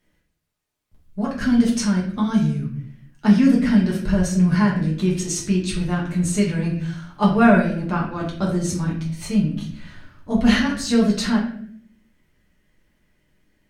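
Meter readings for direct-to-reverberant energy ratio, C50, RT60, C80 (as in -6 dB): -4.5 dB, 6.0 dB, 0.60 s, 9.5 dB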